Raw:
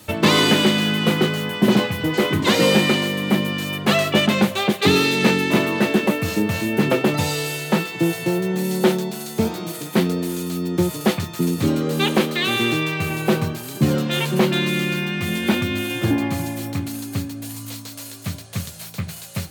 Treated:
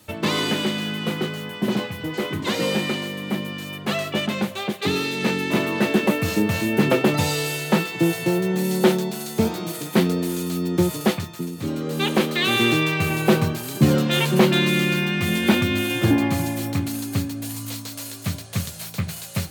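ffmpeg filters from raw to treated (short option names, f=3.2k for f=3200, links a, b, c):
-af "volume=12.5dB,afade=t=in:st=5.13:d=1.07:silence=0.446684,afade=t=out:st=10.96:d=0.55:silence=0.281838,afade=t=in:st=11.51:d=1.14:silence=0.237137"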